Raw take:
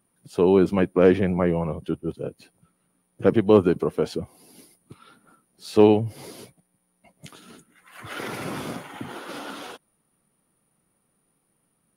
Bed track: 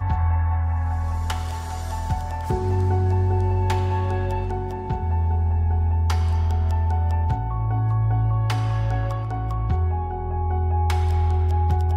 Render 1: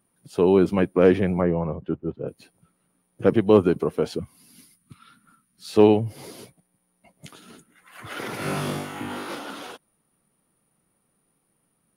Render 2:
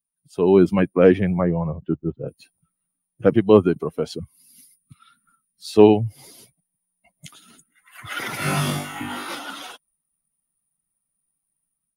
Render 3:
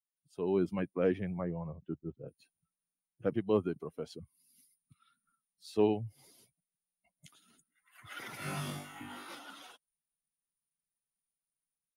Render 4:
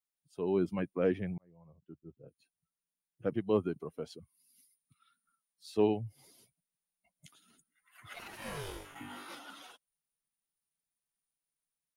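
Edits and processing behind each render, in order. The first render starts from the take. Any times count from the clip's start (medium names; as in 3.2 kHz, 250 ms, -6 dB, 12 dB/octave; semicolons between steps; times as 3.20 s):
1.41–2.28 s: low-pass 1.7 kHz; 4.19–5.69 s: high-order bell 540 Hz -13.5 dB; 8.37–9.35 s: flutter echo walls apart 3.5 m, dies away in 0.68 s
expander on every frequency bin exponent 1.5; level rider gain up to 10 dB
trim -16 dB
1.38–3.54 s: fade in; 4.12–5.76 s: bass shelf 320 Hz -7 dB; 8.13–8.94 s: ring modulator 810 Hz -> 130 Hz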